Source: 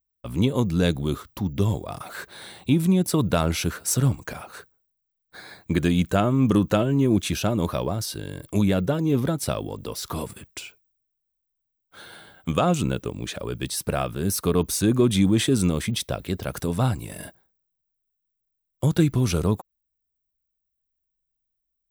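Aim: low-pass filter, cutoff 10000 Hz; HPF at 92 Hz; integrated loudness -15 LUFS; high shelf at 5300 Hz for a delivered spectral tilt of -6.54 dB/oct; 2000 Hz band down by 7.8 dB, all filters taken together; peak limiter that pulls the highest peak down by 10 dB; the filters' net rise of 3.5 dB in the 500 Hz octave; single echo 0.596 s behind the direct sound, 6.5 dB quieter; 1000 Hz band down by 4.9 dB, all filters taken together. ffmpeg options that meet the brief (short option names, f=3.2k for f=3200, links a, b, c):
-af "highpass=92,lowpass=10k,equalizer=f=500:t=o:g=7,equalizer=f=1k:t=o:g=-9,equalizer=f=2k:t=o:g=-7.5,highshelf=f=5.3k:g=-4.5,alimiter=limit=-15.5dB:level=0:latency=1,aecho=1:1:596:0.473,volume=12dB"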